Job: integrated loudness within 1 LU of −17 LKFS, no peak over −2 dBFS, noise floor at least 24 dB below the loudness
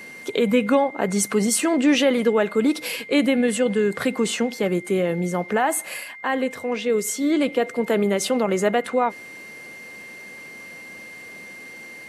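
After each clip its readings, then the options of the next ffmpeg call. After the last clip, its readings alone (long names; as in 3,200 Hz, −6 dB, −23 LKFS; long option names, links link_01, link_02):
interfering tone 2,100 Hz; level of the tone −38 dBFS; integrated loudness −21.5 LKFS; sample peak −7.5 dBFS; target loudness −17.0 LKFS
→ -af "bandreject=frequency=2100:width=30"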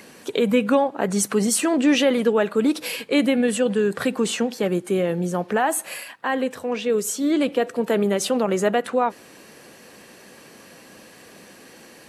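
interfering tone none found; integrated loudness −22.0 LKFS; sample peak −7.5 dBFS; target loudness −17.0 LKFS
→ -af "volume=5dB"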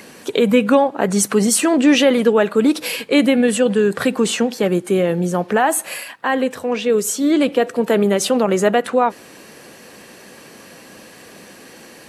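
integrated loudness −17.0 LKFS; sample peak −2.5 dBFS; background noise floor −42 dBFS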